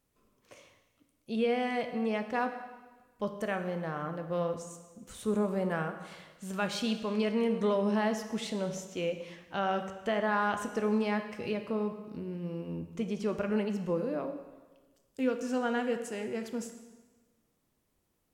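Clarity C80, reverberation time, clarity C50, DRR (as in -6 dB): 10.5 dB, 1.3 s, 9.0 dB, 6.5 dB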